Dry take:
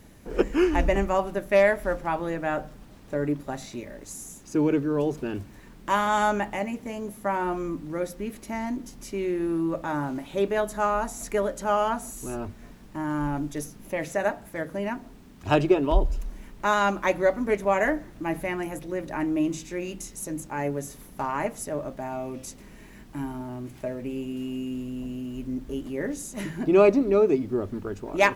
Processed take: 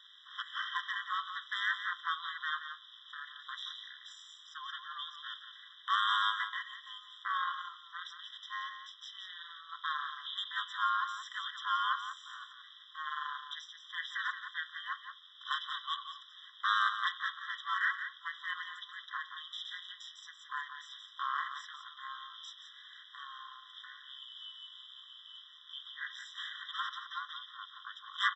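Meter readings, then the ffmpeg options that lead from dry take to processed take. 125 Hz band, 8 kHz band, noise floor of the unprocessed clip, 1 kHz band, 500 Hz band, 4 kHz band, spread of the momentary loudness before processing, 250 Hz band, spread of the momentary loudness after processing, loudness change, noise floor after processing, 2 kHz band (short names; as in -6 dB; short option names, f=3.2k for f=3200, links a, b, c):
under -40 dB, -20.0 dB, -48 dBFS, -7.5 dB, under -40 dB, +5.0 dB, 14 LU, under -40 dB, 16 LU, -10.5 dB, -57 dBFS, -4.0 dB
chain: -filter_complex "[0:a]lowpass=f=3.4k:t=q:w=14,aresample=16000,asoftclip=type=tanh:threshold=-13dB,aresample=44100,aeval=exprs='val(0)*sin(2*PI*160*n/s)':c=same,acrossover=split=2600[a][b];[b]acompressor=threshold=-40dB:ratio=4:attack=1:release=60[c];[a][c]amix=inputs=2:normalize=0,asplit=2[d][e];[e]aecho=0:1:175:0.355[f];[d][f]amix=inputs=2:normalize=0,afftfilt=real='re*eq(mod(floor(b*sr/1024/1000),2),1)':imag='im*eq(mod(floor(b*sr/1024/1000),2),1)':win_size=1024:overlap=0.75"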